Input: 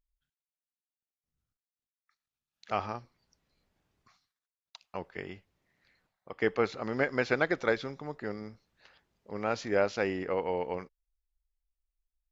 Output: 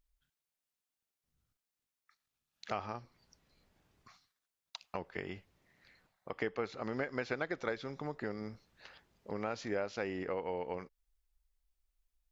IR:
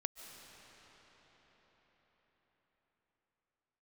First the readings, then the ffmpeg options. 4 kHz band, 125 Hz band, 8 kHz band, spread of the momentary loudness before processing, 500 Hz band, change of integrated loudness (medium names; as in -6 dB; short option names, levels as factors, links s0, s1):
-5.0 dB, -5.0 dB, no reading, 15 LU, -7.5 dB, -7.5 dB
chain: -af "acompressor=threshold=0.00794:ratio=3,volume=1.68"